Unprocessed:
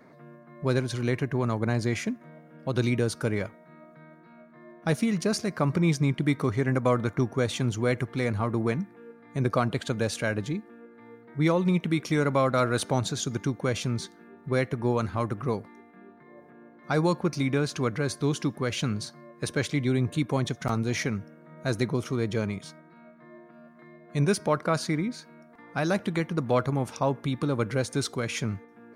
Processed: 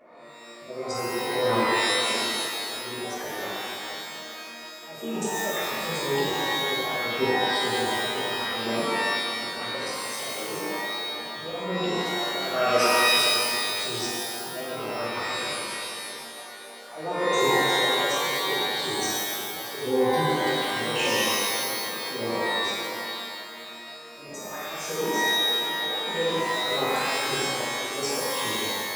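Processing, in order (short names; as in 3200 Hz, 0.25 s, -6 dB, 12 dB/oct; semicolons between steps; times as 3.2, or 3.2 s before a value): formant sharpening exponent 2; HPF 300 Hz 12 dB/oct; notches 50/100/150/200/250/300/350/400/450 Hz; auto swell 0.44 s; formant shift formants +5 st; delay with a stepping band-pass 0.171 s, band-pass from 3200 Hz, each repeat -1.4 oct, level -3 dB; shimmer reverb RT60 1.8 s, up +12 st, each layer -2 dB, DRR -8.5 dB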